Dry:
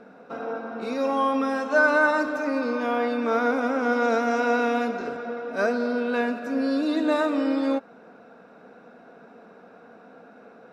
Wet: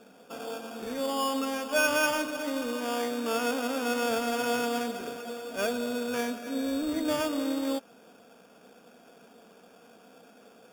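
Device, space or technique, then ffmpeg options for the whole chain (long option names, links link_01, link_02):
crushed at another speed: -af "asetrate=22050,aresample=44100,acrusher=samples=22:mix=1:aa=0.000001,asetrate=88200,aresample=44100,volume=-6dB"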